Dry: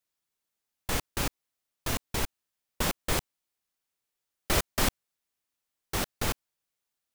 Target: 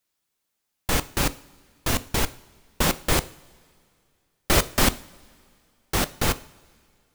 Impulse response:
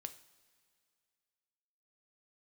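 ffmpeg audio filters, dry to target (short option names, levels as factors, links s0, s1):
-filter_complex "[0:a]asplit=2[s0][s1];[s1]equalizer=f=220:t=o:w=0.96:g=3[s2];[1:a]atrim=start_sample=2205[s3];[s2][s3]afir=irnorm=-1:irlink=0,volume=1.88[s4];[s0][s4]amix=inputs=2:normalize=0"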